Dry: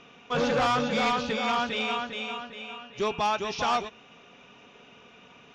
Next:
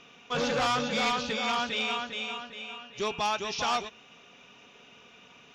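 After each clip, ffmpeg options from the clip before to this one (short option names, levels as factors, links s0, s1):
-af "highshelf=f=2700:g=8.5,volume=0.631"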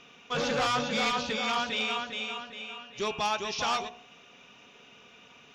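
-af "bandreject=f=60.16:t=h:w=4,bandreject=f=120.32:t=h:w=4,bandreject=f=180.48:t=h:w=4,bandreject=f=240.64:t=h:w=4,bandreject=f=300.8:t=h:w=4,bandreject=f=360.96:t=h:w=4,bandreject=f=421.12:t=h:w=4,bandreject=f=481.28:t=h:w=4,bandreject=f=541.44:t=h:w=4,bandreject=f=601.6:t=h:w=4,bandreject=f=661.76:t=h:w=4,bandreject=f=721.92:t=h:w=4,bandreject=f=782.08:t=h:w=4,bandreject=f=842.24:t=h:w=4,bandreject=f=902.4:t=h:w=4,bandreject=f=962.56:t=h:w=4,bandreject=f=1022.72:t=h:w=4,bandreject=f=1082.88:t=h:w=4,bandreject=f=1143.04:t=h:w=4"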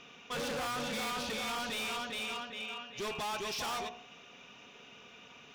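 -af "asoftclip=type=hard:threshold=0.0178"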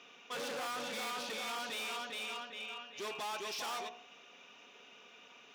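-af "highpass=290,volume=0.708"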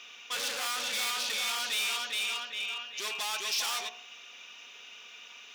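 -af "tiltshelf=f=1200:g=-9.5,volume=1.5"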